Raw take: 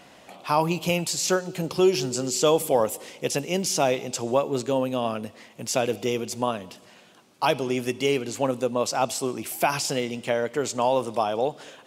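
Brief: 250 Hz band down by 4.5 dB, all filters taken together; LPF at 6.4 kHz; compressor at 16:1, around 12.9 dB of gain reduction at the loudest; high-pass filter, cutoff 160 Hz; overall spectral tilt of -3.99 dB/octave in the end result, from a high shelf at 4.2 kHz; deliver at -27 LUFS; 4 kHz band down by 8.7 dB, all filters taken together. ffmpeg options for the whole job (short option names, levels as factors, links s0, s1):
-af "highpass=160,lowpass=6400,equalizer=f=250:t=o:g=-5.5,equalizer=f=4000:t=o:g=-8.5,highshelf=f=4200:g=-5,acompressor=threshold=0.0316:ratio=16,volume=2.99"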